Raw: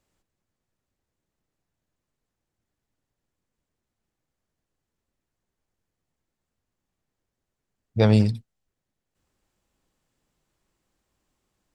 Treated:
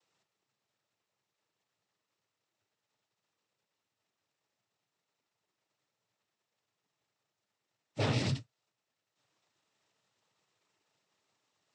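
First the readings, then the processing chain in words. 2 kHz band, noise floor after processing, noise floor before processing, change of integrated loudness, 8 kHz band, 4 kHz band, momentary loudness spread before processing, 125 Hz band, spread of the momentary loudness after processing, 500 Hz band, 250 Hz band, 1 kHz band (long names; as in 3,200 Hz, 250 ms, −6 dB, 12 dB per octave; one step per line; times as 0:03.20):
−4.5 dB, below −85 dBFS, −84 dBFS, −13.0 dB, can't be measured, −3.0 dB, 17 LU, −12.5 dB, 11 LU, −13.5 dB, −15.5 dB, −6.5 dB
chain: spectral envelope flattened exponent 0.6
low-pass filter 6,200 Hz
parametric band 210 Hz −5 dB 1.9 octaves
notch filter 1,600 Hz, Q 9.6
downward compressor 1.5 to 1, threshold −25 dBFS, peak gain reduction 4 dB
brickwall limiter −19.5 dBFS, peak gain reduction 10 dB
cochlear-implant simulation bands 12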